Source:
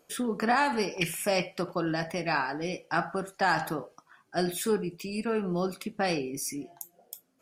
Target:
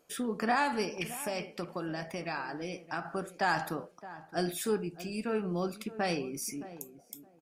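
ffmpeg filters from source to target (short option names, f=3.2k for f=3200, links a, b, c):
-filter_complex "[0:a]asettb=1/sr,asplit=3[a][b][c];[a]atrim=end=0.954[d];[b]atrim=start=0.95:end=3.05,asetpts=PTS-STARTPTS,afade=t=in:d=0.004:c=qsin,afade=t=out:st=2.096:d=0.004:c=qsin,acompressor=threshold=-31dB:ratio=2.5[e];[c]atrim=start=3.046[f];[d][e]acrossfade=d=0.004:c1=hsin:c2=qsin[g];[g][f]acrossfade=d=0.004:c1=qsin:c2=hsin,asplit=2[h][i];[i]adelay=618,lowpass=f=1k:p=1,volume=-14dB,asplit=2[j][k];[k]adelay=618,lowpass=f=1k:p=1,volume=0.19[l];[j][l]amix=inputs=2:normalize=0[m];[h][m]amix=inputs=2:normalize=0,volume=-3.5dB"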